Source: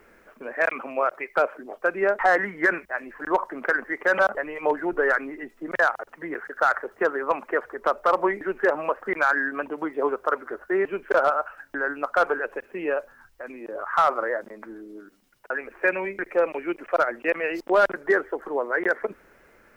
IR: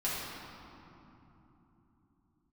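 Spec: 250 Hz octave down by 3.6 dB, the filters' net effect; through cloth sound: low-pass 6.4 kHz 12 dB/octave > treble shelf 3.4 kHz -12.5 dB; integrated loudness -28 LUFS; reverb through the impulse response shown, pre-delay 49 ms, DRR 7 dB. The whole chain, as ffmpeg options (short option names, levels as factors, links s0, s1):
-filter_complex "[0:a]equalizer=f=250:t=o:g=-6,asplit=2[s0][s1];[1:a]atrim=start_sample=2205,adelay=49[s2];[s1][s2]afir=irnorm=-1:irlink=0,volume=0.2[s3];[s0][s3]amix=inputs=2:normalize=0,lowpass=6400,highshelf=f=3400:g=-12.5,volume=0.794"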